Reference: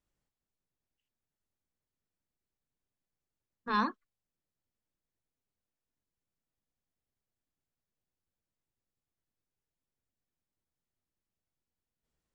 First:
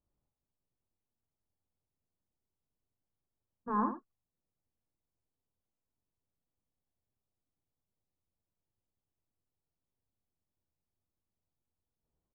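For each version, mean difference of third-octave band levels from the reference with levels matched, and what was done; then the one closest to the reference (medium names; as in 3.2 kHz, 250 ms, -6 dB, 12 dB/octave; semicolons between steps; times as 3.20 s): 7.0 dB: low-pass 1.1 kHz 24 dB/octave; peaking EQ 91 Hz +4.5 dB 0.77 oct; on a send: delay 79 ms -8.5 dB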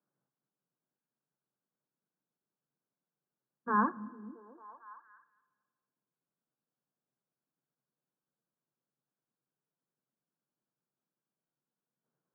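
5.5 dB: Chebyshev band-pass 130–1600 Hz, order 5; repeats whose band climbs or falls 225 ms, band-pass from 170 Hz, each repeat 0.7 oct, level -10 dB; Schroeder reverb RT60 1.6 s, combs from 27 ms, DRR 19 dB; trim +2 dB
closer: second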